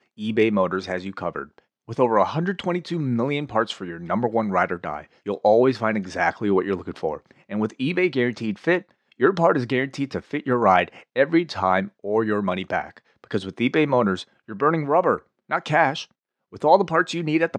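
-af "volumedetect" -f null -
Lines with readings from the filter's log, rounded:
mean_volume: -22.7 dB
max_volume: -2.6 dB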